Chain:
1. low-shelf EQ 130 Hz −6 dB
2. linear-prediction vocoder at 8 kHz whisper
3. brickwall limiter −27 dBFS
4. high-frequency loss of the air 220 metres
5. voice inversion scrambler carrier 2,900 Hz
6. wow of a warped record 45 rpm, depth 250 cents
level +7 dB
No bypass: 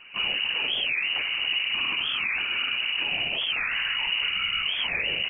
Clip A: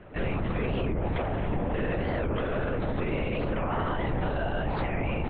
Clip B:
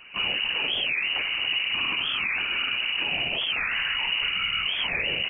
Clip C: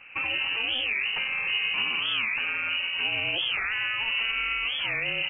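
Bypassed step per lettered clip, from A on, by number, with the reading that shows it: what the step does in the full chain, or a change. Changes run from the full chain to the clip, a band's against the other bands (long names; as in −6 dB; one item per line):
5, 2 kHz band −28.0 dB
4, 2 kHz band −2.5 dB
2, 125 Hz band +1.5 dB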